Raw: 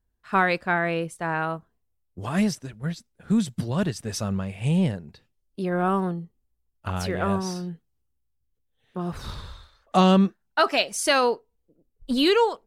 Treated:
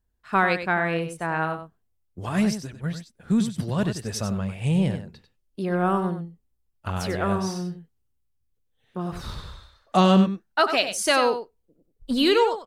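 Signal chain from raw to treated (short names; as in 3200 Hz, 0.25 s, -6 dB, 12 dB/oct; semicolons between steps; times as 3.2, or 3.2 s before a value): echo 95 ms -9.5 dB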